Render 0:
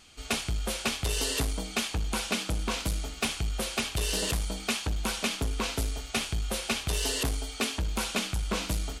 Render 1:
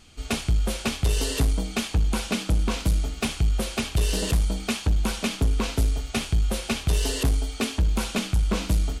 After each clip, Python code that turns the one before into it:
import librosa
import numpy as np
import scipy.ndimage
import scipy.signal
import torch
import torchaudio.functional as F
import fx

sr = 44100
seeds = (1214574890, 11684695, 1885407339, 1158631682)

y = fx.low_shelf(x, sr, hz=370.0, db=9.5)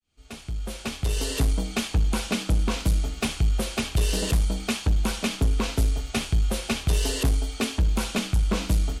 y = fx.fade_in_head(x, sr, length_s=1.53)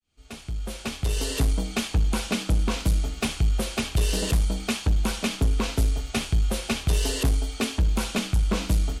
y = x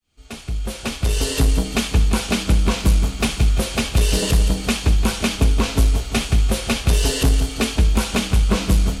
y = fx.echo_feedback(x, sr, ms=172, feedback_pct=54, wet_db=-10.0)
y = F.gain(torch.from_numpy(y), 6.0).numpy()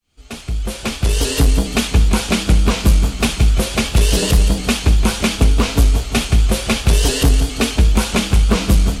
y = fx.vibrato_shape(x, sr, shape='saw_up', rate_hz=4.8, depth_cents=100.0)
y = F.gain(torch.from_numpy(y), 3.5).numpy()